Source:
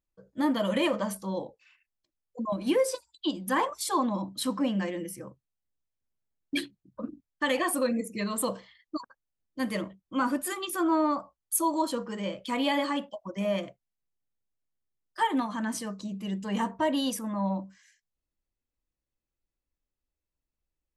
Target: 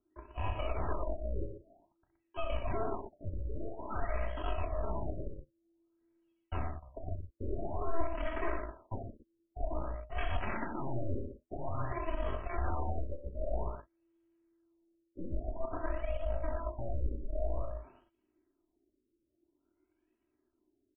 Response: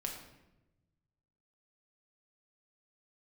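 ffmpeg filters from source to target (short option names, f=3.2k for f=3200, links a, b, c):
-filter_complex "[0:a]aeval=exprs='val(0)*sin(2*PI*230*n/s)':c=same,acrossover=split=130|3700[a][b][c];[a]acontrast=89[d];[d][b][c]amix=inputs=3:normalize=0,asetrate=64194,aresample=44100,atempo=0.686977,asoftclip=type=hard:threshold=-25.5dB,areverse,acompressor=threshold=-42dB:ratio=10,areverse,acrusher=samples=17:mix=1:aa=0.000001:lfo=1:lforange=17:lforate=0.47,aeval=exprs='0.0224*(cos(1*acos(clip(val(0)/0.0224,-1,1)))-cos(1*PI/2))+0.00447*(cos(4*acos(clip(val(0)/0.0224,-1,1)))-cos(4*PI/2))':c=same,aecho=1:1:3.1:0.65,aecho=1:1:32.07|64.14|119.5:0.316|0.398|0.447,afftfilt=real='re*lt(b*sr/1024,560*pow(3400/560,0.5+0.5*sin(2*PI*0.51*pts/sr)))':imag='im*lt(b*sr/1024,560*pow(3400/560,0.5+0.5*sin(2*PI*0.51*pts/sr)))':win_size=1024:overlap=0.75,volume=5.5dB"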